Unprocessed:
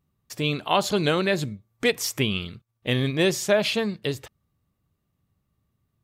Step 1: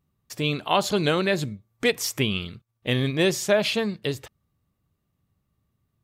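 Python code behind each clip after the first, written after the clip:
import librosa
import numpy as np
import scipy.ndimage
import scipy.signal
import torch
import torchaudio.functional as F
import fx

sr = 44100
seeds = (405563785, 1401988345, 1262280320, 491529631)

y = x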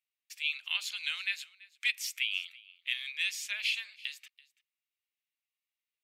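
y = fx.ladder_highpass(x, sr, hz=2100.0, resonance_pct=55)
y = y + 10.0 ** (-22.0 / 20.0) * np.pad(y, (int(334 * sr / 1000.0), 0))[:len(y)]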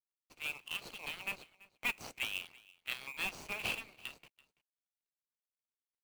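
y = scipy.ndimage.median_filter(x, 25, mode='constant')
y = fx.rider(y, sr, range_db=10, speed_s=2.0)
y = y * 10.0 ** (4.0 / 20.0)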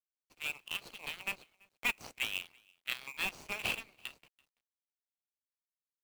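y = fx.law_mismatch(x, sr, coded='A')
y = y * 10.0 ** (4.0 / 20.0)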